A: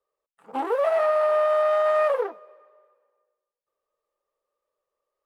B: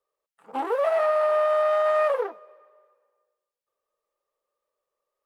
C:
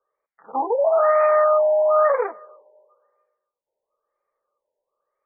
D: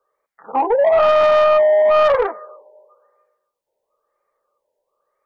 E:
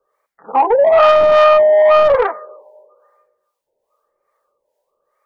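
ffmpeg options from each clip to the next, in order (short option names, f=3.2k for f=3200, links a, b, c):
-af "lowshelf=f=350:g=-3.5"
-af "lowshelf=f=460:g=-8.5,afftfilt=real='re*lt(b*sr/1024,980*pow(2500/980,0.5+0.5*sin(2*PI*1*pts/sr)))':imag='im*lt(b*sr/1024,980*pow(2500/980,0.5+0.5*sin(2*PI*1*pts/sr)))':win_size=1024:overlap=0.75,volume=8dB"
-af "asoftclip=type=tanh:threshold=-15.5dB,volume=7dB"
-filter_complex "[0:a]acrossover=split=590[a][b];[a]aeval=exprs='val(0)*(1-0.7/2+0.7/2*cos(2*PI*2.4*n/s))':c=same[c];[b]aeval=exprs='val(0)*(1-0.7/2-0.7/2*cos(2*PI*2.4*n/s))':c=same[d];[c][d]amix=inputs=2:normalize=0,volume=7dB"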